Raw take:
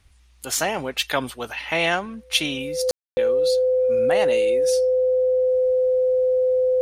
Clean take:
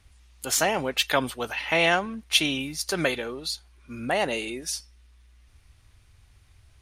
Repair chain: band-stop 510 Hz, Q 30; room tone fill 2.91–3.17 s

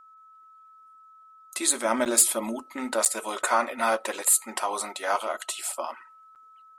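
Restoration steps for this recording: clip repair -10.5 dBFS; band-stop 1.3 kHz, Q 30; interpolate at 2.05/3.05/6.35 s, 8 ms

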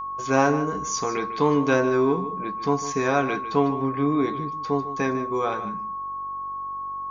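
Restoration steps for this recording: de-hum 47.7 Hz, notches 10; band-stop 1.1 kHz, Q 30; inverse comb 151 ms -13 dB

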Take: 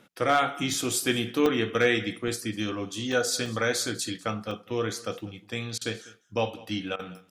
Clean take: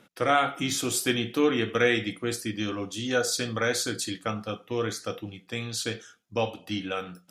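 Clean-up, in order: clip repair -12 dBFS; interpolate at 0.74/1.46/2.28/3.12/3.46/4.51/5.21 s, 2.5 ms; interpolate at 5.78/6.96 s, 32 ms; inverse comb 198 ms -21 dB

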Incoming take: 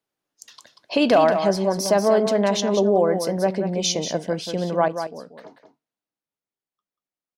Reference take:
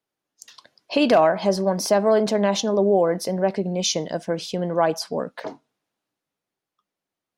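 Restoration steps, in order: inverse comb 187 ms -8.5 dB; trim 0 dB, from 4.88 s +11.5 dB

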